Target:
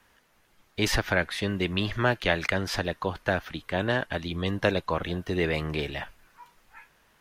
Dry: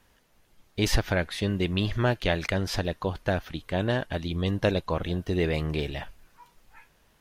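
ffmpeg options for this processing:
-filter_complex "[0:a]lowshelf=f=120:g=-6.5,acrossover=split=350|650|1900[a][b][c][d];[c]crystalizer=i=9:c=0[e];[a][b][e][d]amix=inputs=4:normalize=0"

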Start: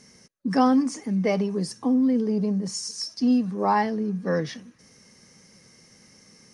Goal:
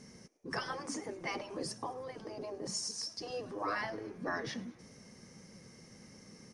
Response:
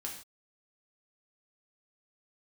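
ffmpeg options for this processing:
-filter_complex "[0:a]tiltshelf=f=1.2k:g=4,afftfilt=real='re*lt(hypot(re,im),0.224)':imag='im*lt(hypot(re,im),0.224)':win_size=1024:overlap=0.75,asplit=5[a][b][c][d][e];[b]adelay=106,afreqshift=120,volume=-22.5dB[f];[c]adelay=212,afreqshift=240,volume=-27.2dB[g];[d]adelay=318,afreqshift=360,volume=-32dB[h];[e]adelay=424,afreqshift=480,volume=-36.7dB[i];[a][f][g][h][i]amix=inputs=5:normalize=0,volume=-2dB"

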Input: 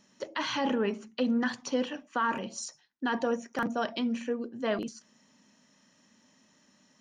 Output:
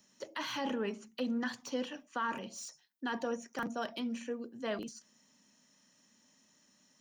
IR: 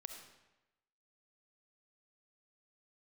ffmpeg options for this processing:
-filter_complex "[0:a]aemphasis=mode=production:type=50kf,acrossover=split=120|820|3100[a][b][c][d];[d]asoftclip=type=tanh:threshold=-36.5dB[e];[a][b][c][e]amix=inputs=4:normalize=0,volume=-7dB"

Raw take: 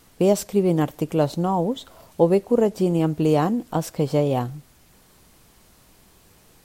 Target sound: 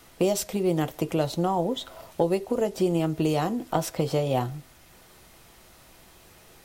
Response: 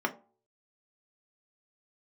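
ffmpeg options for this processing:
-filter_complex "[0:a]acrossover=split=120|3000[a][b][c];[b]acompressor=threshold=-23dB:ratio=6[d];[a][d][c]amix=inputs=3:normalize=0,asplit=2[e][f];[1:a]atrim=start_sample=2205,asetrate=74970,aresample=44100[g];[f][g]afir=irnorm=-1:irlink=0,volume=-7.5dB[h];[e][h]amix=inputs=2:normalize=0"

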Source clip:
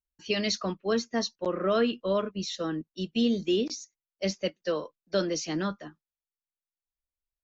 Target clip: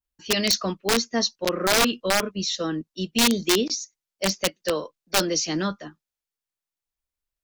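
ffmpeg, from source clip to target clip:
-af "aeval=exprs='(mod(8.41*val(0)+1,2)-1)/8.41':c=same,adynamicequalizer=threshold=0.00631:dfrequency=5400:dqfactor=0.82:tfrequency=5400:tqfactor=0.82:attack=5:release=100:ratio=0.375:range=3:mode=boostabove:tftype=bell,volume=4dB"

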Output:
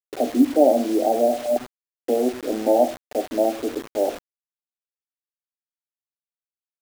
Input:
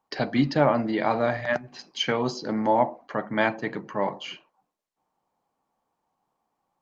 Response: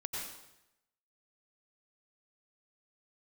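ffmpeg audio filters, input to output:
-af "asuperpass=centerf=430:order=20:qfactor=0.79,acrusher=bits=6:mix=0:aa=0.000001,volume=6.5dB"

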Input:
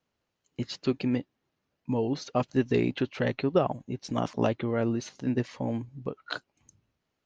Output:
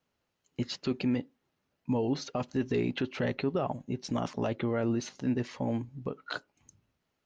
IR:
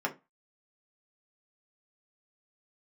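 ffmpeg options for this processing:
-filter_complex "[0:a]alimiter=limit=-21dB:level=0:latency=1:release=18,asplit=2[a][b];[1:a]atrim=start_sample=2205[c];[b][c]afir=irnorm=-1:irlink=0,volume=-22.5dB[d];[a][d]amix=inputs=2:normalize=0"

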